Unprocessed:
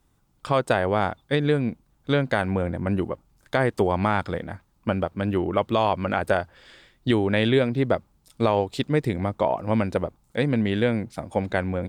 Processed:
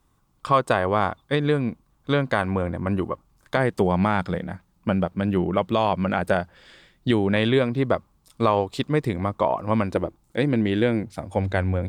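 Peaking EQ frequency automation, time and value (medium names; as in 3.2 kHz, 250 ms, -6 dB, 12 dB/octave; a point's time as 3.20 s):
peaking EQ +9 dB 0.25 oct
1.1 kHz
from 3.56 s 180 Hz
from 7.36 s 1.1 kHz
from 9.95 s 330 Hz
from 11.03 s 95 Hz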